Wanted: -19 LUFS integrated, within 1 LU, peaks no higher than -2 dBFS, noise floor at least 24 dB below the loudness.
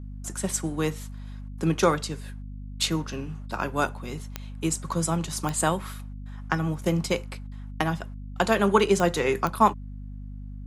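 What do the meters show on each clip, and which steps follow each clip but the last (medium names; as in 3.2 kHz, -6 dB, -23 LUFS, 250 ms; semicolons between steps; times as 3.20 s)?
clicks found 4; hum 50 Hz; highest harmonic 250 Hz; hum level -35 dBFS; loudness -26.5 LUFS; peak level -6.0 dBFS; loudness target -19.0 LUFS
-> de-click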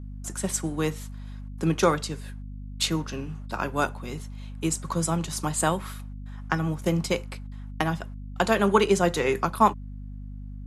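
clicks found 0; hum 50 Hz; highest harmonic 250 Hz; hum level -35 dBFS
-> hum notches 50/100/150/200/250 Hz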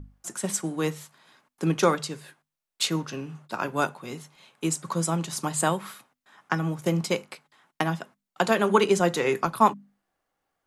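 hum not found; loudness -26.5 LUFS; peak level -5.5 dBFS; loudness target -19.0 LUFS
-> trim +7.5 dB; peak limiter -2 dBFS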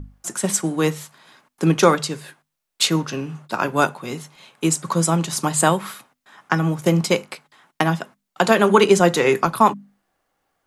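loudness -19.5 LUFS; peak level -2.0 dBFS; noise floor -80 dBFS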